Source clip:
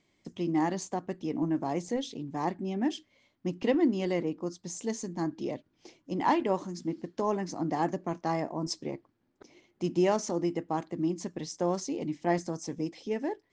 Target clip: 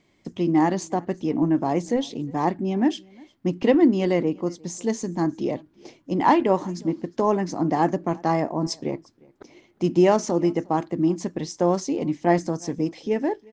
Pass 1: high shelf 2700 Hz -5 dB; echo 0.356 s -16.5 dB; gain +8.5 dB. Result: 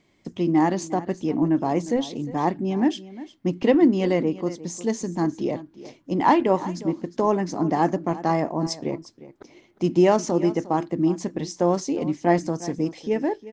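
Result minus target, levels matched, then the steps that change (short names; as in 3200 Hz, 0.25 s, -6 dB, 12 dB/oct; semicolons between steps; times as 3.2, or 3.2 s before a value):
echo-to-direct +9.5 dB
change: echo 0.356 s -26 dB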